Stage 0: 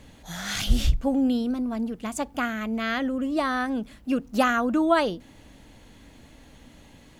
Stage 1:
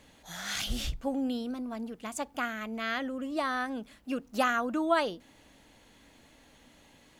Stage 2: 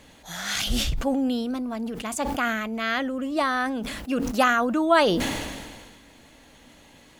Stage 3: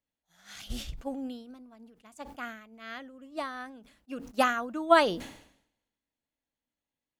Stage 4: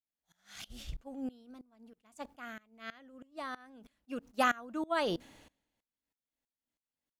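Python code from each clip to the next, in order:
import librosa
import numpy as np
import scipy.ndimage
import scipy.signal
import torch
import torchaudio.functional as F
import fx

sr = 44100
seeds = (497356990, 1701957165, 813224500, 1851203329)

y1 = fx.low_shelf(x, sr, hz=250.0, db=-10.5)
y1 = F.gain(torch.from_numpy(y1), -4.0).numpy()
y2 = fx.sustainer(y1, sr, db_per_s=34.0)
y2 = F.gain(torch.from_numpy(y2), 6.5).numpy()
y3 = fx.upward_expand(y2, sr, threshold_db=-42.0, expansion=2.5)
y4 = fx.tremolo_decay(y3, sr, direction='swelling', hz=3.1, depth_db=22)
y4 = F.gain(torch.from_numpy(y4), 2.0).numpy()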